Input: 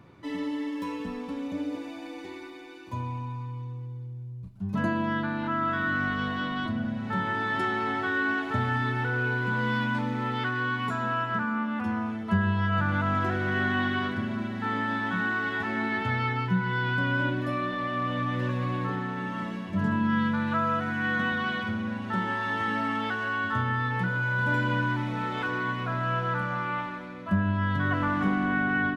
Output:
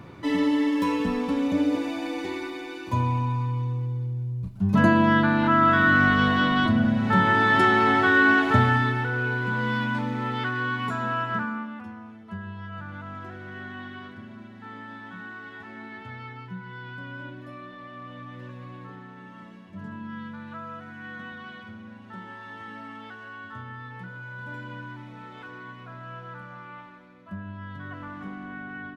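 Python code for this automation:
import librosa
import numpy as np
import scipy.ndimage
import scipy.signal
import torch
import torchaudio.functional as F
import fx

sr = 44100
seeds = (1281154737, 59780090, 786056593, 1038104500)

y = fx.gain(x, sr, db=fx.line((8.56, 9.0), (9.07, 1.0), (11.39, 1.0), (11.95, -12.0)))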